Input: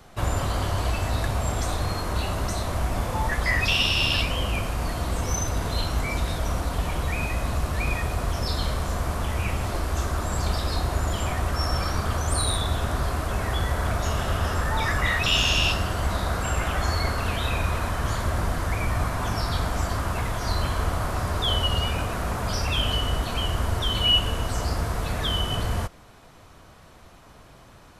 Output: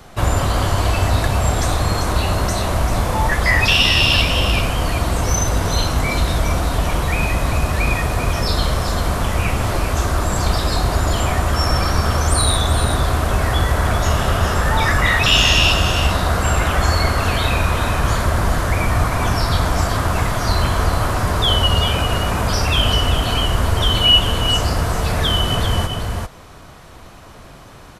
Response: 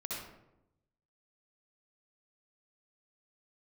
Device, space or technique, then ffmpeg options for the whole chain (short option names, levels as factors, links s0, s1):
ducked delay: -filter_complex "[0:a]asplit=3[s0][s1][s2];[s1]adelay=392,volume=0.562[s3];[s2]apad=whole_len=1252003[s4];[s3][s4]sidechaincompress=threshold=0.0562:ratio=8:attack=16:release=189[s5];[s0][s5]amix=inputs=2:normalize=0,volume=2.51"